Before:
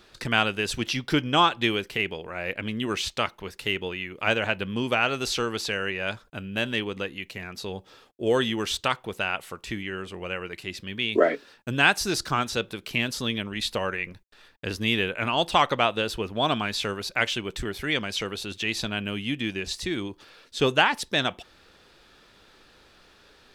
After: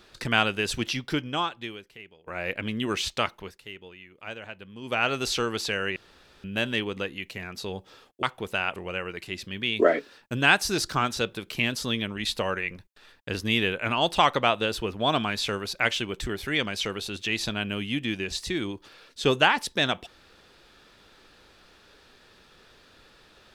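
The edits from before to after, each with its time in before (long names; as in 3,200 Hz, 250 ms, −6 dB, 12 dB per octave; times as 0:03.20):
0:00.79–0:02.27: fade out quadratic, to −21.5 dB
0:03.26–0:05.15: duck −14.5 dB, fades 0.34 s equal-power
0:05.96–0:06.44: fill with room tone
0:08.23–0:08.89: remove
0:09.42–0:10.12: remove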